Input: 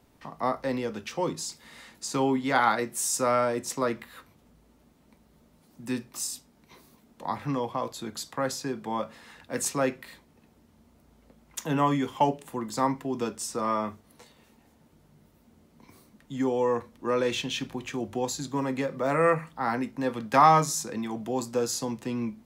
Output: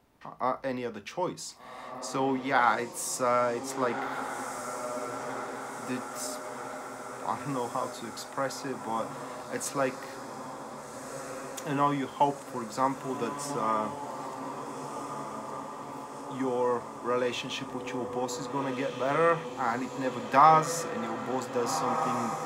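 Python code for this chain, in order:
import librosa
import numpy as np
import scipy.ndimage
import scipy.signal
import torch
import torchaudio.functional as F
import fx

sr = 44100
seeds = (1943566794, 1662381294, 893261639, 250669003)

p1 = fx.peak_eq(x, sr, hz=1100.0, db=5.5, octaves=2.7)
p2 = p1 + fx.echo_diffused(p1, sr, ms=1581, feedback_pct=68, wet_db=-8.0, dry=0)
y = p2 * librosa.db_to_amplitude(-6.0)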